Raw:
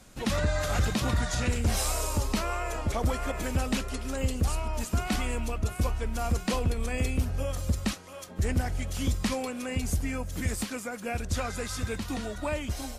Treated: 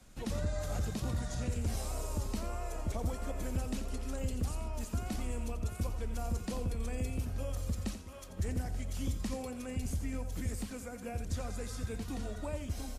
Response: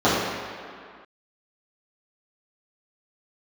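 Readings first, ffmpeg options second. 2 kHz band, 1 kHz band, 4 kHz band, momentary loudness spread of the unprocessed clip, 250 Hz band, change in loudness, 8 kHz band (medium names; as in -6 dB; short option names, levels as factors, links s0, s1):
-14.0 dB, -11.0 dB, -12.0 dB, 5 LU, -7.0 dB, -7.5 dB, -10.0 dB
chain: -filter_complex "[0:a]lowshelf=f=85:g=8.5,acrossover=split=80|810|5100[s0][s1][s2][s3];[s0]acompressor=threshold=0.0282:ratio=4[s4];[s1]acompressor=threshold=0.0501:ratio=4[s5];[s2]acompressor=threshold=0.00562:ratio=4[s6];[s3]acompressor=threshold=0.01:ratio=4[s7];[s4][s5][s6][s7]amix=inputs=4:normalize=0,aecho=1:1:87|883:0.299|0.168,volume=0.422"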